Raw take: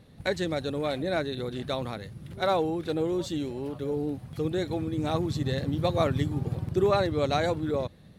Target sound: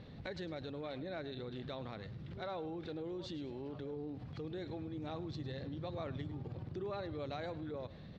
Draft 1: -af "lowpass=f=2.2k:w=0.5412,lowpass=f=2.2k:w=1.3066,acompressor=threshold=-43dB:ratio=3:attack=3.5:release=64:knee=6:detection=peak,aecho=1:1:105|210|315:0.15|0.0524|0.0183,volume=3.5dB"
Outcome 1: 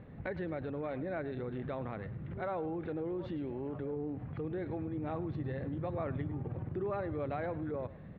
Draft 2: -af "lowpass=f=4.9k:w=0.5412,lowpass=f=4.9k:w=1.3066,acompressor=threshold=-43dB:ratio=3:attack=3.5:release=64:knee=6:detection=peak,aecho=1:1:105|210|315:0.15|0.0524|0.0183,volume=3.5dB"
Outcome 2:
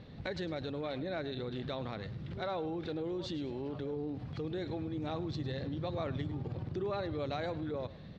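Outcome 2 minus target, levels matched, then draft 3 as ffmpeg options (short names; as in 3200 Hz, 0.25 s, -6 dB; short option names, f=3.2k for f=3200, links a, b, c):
compressor: peak gain reduction -5.5 dB
-af "lowpass=f=4.9k:w=0.5412,lowpass=f=4.9k:w=1.3066,acompressor=threshold=-51dB:ratio=3:attack=3.5:release=64:knee=6:detection=peak,aecho=1:1:105|210|315:0.15|0.0524|0.0183,volume=3.5dB"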